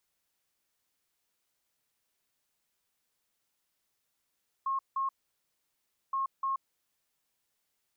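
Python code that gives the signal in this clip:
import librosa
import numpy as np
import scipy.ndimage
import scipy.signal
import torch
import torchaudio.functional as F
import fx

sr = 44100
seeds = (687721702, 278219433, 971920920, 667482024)

y = fx.beep_pattern(sr, wave='sine', hz=1080.0, on_s=0.13, off_s=0.17, beeps=2, pause_s=1.04, groups=2, level_db=-28.0)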